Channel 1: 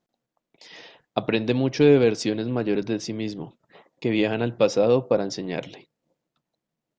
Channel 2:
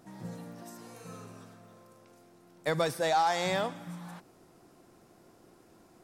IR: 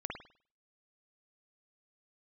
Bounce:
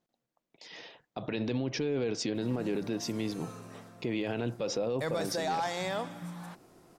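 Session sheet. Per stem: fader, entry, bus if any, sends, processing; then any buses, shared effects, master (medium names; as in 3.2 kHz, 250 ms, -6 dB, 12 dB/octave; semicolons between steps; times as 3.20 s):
-3.0 dB, 0.00 s, no send, peak limiter -14 dBFS, peak gain reduction 8.5 dB
+1.0 dB, 2.35 s, no send, none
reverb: none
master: peak limiter -23.5 dBFS, peak gain reduction 10.5 dB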